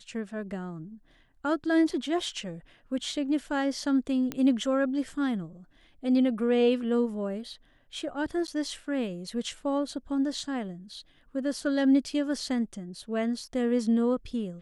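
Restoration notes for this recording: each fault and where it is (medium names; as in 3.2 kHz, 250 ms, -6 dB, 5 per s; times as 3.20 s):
4.32 s: pop -17 dBFS
8.47–8.48 s: dropout 9.6 ms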